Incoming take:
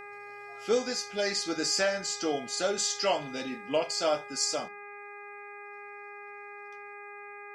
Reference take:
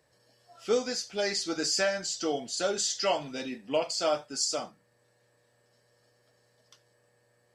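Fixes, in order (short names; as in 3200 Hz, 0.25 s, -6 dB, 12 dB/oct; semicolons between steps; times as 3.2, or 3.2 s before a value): de-hum 408.9 Hz, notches 6; gain correction +9 dB, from 4.68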